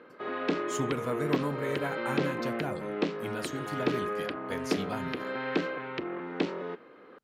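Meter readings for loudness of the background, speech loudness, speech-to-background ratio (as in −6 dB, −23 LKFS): −33.5 LKFS, −36.5 LKFS, −3.0 dB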